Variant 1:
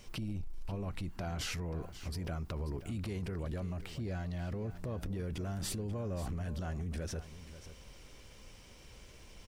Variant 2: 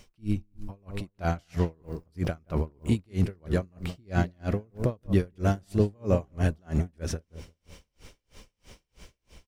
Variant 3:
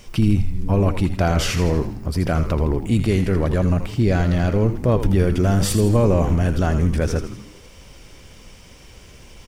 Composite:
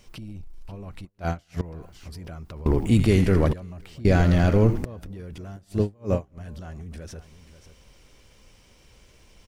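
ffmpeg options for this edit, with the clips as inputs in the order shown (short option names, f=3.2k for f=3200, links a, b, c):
-filter_complex "[1:a]asplit=2[a][b];[2:a]asplit=2[c][d];[0:a]asplit=5[e][f][g][h][i];[e]atrim=end=1.052[j];[a]atrim=start=1.048:end=1.612[k];[f]atrim=start=1.608:end=2.662[l];[c]atrim=start=2.658:end=3.532[m];[g]atrim=start=3.528:end=4.052[n];[d]atrim=start=4.048:end=4.852[o];[h]atrim=start=4.848:end=5.562[p];[b]atrim=start=5.558:end=6.382[q];[i]atrim=start=6.378[r];[j][k]acrossfade=d=0.004:c1=hsin:c2=hsin[s];[s][l]acrossfade=d=0.004:c1=hsin:c2=hsin[t];[t][m]acrossfade=d=0.004:c1=hsin:c2=hsin[u];[u][n]acrossfade=d=0.004:c1=hsin:c2=hsin[v];[v][o]acrossfade=d=0.004:c1=hsin:c2=hsin[w];[w][p]acrossfade=d=0.004:c1=hsin:c2=hsin[x];[x][q]acrossfade=d=0.004:c1=hsin:c2=hsin[y];[y][r]acrossfade=d=0.004:c1=hsin:c2=hsin"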